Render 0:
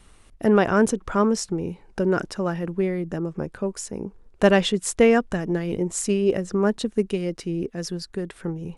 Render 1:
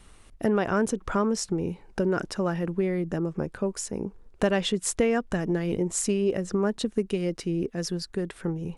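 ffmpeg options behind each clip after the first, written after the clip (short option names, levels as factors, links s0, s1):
-af "acompressor=threshold=0.0794:ratio=3"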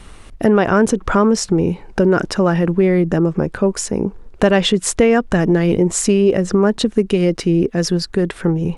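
-filter_complex "[0:a]highshelf=f=7000:g=-7.5,asplit=2[s0][s1];[s1]alimiter=limit=0.075:level=0:latency=1:release=67,volume=1.06[s2];[s0][s2]amix=inputs=2:normalize=0,volume=2.37"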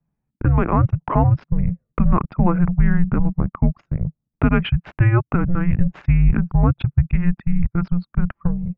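-af "anlmdn=3980,highpass=f=170:t=q:w=0.5412,highpass=f=170:t=q:w=1.307,lowpass=f=2900:t=q:w=0.5176,lowpass=f=2900:t=q:w=0.7071,lowpass=f=2900:t=q:w=1.932,afreqshift=-350,dynaudnorm=f=230:g=7:m=3.76,volume=0.708"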